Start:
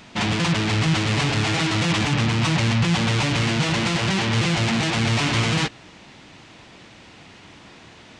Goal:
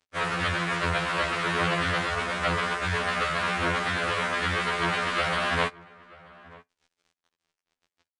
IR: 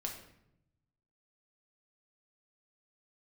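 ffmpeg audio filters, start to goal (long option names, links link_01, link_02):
-filter_complex "[0:a]highpass=frequency=1100:poles=1,bandreject=frequency=1600:width=20,asetrate=23361,aresample=44100,atempo=1.88775,acrusher=bits=5:mix=0:aa=0.5,asplit=2[link_01][link_02];[link_02]adelay=932.9,volume=-21dB,highshelf=frequency=4000:gain=-21[link_03];[link_01][link_03]amix=inputs=2:normalize=0,asplit=2[link_04][link_05];[1:a]atrim=start_sample=2205,atrim=end_sample=3528[link_06];[link_05][link_06]afir=irnorm=-1:irlink=0,volume=-20dB[link_07];[link_04][link_07]amix=inputs=2:normalize=0,aresample=22050,aresample=44100,afftfilt=real='re*2*eq(mod(b,4),0)':imag='im*2*eq(mod(b,4),0)':win_size=2048:overlap=0.75,volume=2dB"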